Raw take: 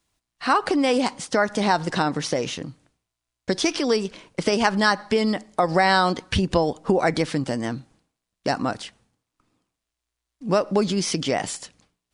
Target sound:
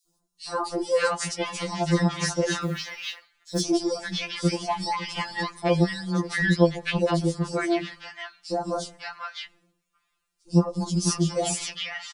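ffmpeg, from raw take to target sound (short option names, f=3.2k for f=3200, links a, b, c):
-filter_complex "[0:a]acompressor=threshold=-24dB:ratio=6,acrossover=split=1100|4300[a][b][c];[a]adelay=70[d];[b]adelay=560[e];[d][e][c]amix=inputs=3:normalize=0,asettb=1/sr,asplit=3[f][g][h];[f]atrim=end=2.634[i];[g]atrim=start=2.63:end=3.61,asetpts=PTS-STARTPTS,afade=t=in:d=0.004:c=qsin,afade=t=out:st=0.976:d=0.004:c=qsin,acrusher=bits=6:mode=log:mix=0:aa=0.000001[j];[h]atrim=start=3.606[k];[i][j]acrossfade=d=0.004:c1=hsin:c2=qsin[l];[l][k]acrossfade=d=0.004:c1=qsin:c2=hsin,afftfilt=real='re*2.83*eq(mod(b,8),0)':imag='im*2.83*eq(mod(b,8),0)':win_size=2048:overlap=0.75,volume=7dB"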